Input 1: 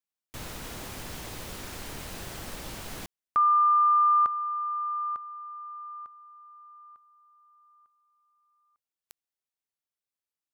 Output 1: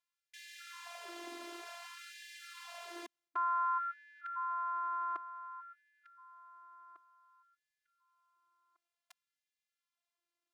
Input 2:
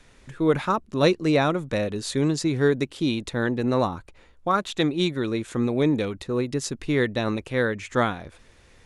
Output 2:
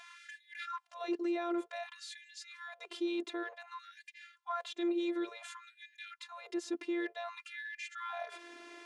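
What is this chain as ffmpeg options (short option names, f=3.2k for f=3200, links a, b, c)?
-af "afftfilt=real='hypot(re,im)*cos(PI*b)':imag='0':win_size=512:overlap=0.75,areverse,acompressor=threshold=-36dB:ratio=10:attack=0.29:release=115:knee=1:detection=rms,areverse,alimiter=level_in=12dB:limit=-24dB:level=0:latency=1:release=30,volume=-12dB,aemphasis=mode=reproduction:type=50fm,afftfilt=real='re*gte(b*sr/1024,240*pow(1600/240,0.5+0.5*sin(2*PI*0.55*pts/sr)))':imag='im*gte(b*sr/1024,240*pow(1600/240,0.5+0.5*sin(2*PI*0.55*pts/sr)))':win_size=1024:overlap=0.75,volume=10.5dB"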